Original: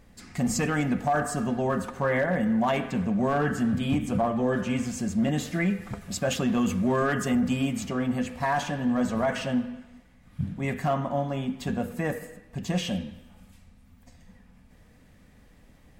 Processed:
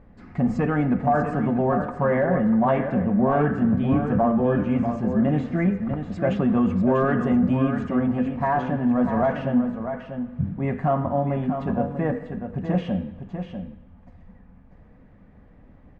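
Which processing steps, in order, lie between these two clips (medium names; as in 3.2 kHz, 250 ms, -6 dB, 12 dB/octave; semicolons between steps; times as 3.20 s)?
low-pass 1.3 kHz 12 dB/octave; on a send: delay 644 ms -8 dB; on the sum: trim +4.5 dB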